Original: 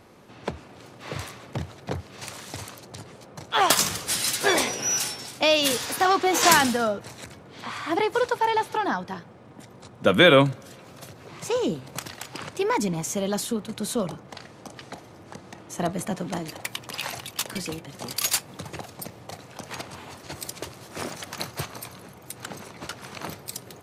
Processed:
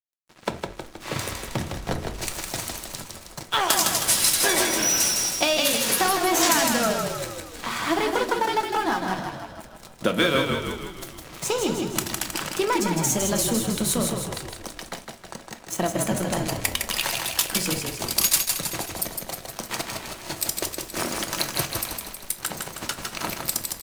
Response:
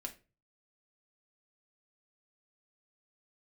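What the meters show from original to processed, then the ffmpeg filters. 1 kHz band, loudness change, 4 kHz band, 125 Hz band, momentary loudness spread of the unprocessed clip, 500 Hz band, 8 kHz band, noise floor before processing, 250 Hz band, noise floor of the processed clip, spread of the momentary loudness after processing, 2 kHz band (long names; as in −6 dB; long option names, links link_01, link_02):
−0.5 dB, +0.5 dB, +2.0 dB, +1.0 dB, 22 LU, −1.5 dB, +5.5 dB, −48 dBFS, +1.0 dB, −45 dBFS, 15 LU, 0.0 dB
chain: -filter_complex "[0:a]bandreject=frequency=46.93:width_type=h:width=4,bandreject=frequency=93.86:width_type=h:width=4,bandreject=frequency=140.79:width_type=h:width=4,bandreject=frequency=187.72:width_type=h:width=4,bandreject=frequency=234.65:width_type=h:width=4,bandreject=frequency=281.58:width_type=h:width=4,bandreject=frequency=328.51:width_type=h:width=4,bandreject=frequency=375.44:width_type=h:width=4,bandreject=frequency=422.37:width_type=h:width=4,bandreject=frequency=469.3:width_type=h:width=4,bandreject=frequency=516.23:width_type=h:width=4,bandreject=frequency=563.16:width_type=h:width=4,bandreject=frequency=610.09:width_type=h:width=4,bandreject=frequency=657.02:width_type=h:width=4,bandreject=frequency=703.95:width_type=h:width=4,bandreject=frequency=750.88:width_type=h:width=4,bandreject=frequency=797.81:width_type=h:width=4,acompressor=threshold=-28dB:ratio=4,aeval=exprs='sgn(val(0))*max(abs(val(0))-0.00708,0)':channel_layout=same,asplit=9[link_01][link_02][link_03][link_04][link_05][link_06][link_07][link_08][link_09];[link_02]adelay=158,afreqshift=-38,volume=-4.5dB[link_10];[link_03]adelay=316,afreqshift=-76,volume=-9.5dB[link_11];[link_04]adelay=474,afreqshift=-114,volume=-14.6dB[link_12];[link_05]adelay=632,afreqshift=-152,volume=-19.6dB[link_13];[link_06]adelay=790,afreqshift=-190,volume=-24.6dB[link_14];[link_07]adelay=948,afreqshift=-228,volume=-29.7dB[link_15];[link_08]adelay=1106,afreqshift=-266,volume=-34.7dB[link_16];[link_09]adelay=1264,afreqshift=-304,volume=-39.8dB[link_17];[link_01][link_10][link_11][link_12][link_13][link_14][link_15][link_16][link_17]amix=inputs=9:normalize=0,asplit=2[link_18][link_19];[1:a]atrim=start_sample=2205,highshelf=frequency=5400:gain=10.5[link_20];[link_19][link_20]afir=irnorm=-1:irlink=0,volume=3.5dB[link_21];[link_18][link_21]amix=inputs=2:normalize=0,volume=1.5dB"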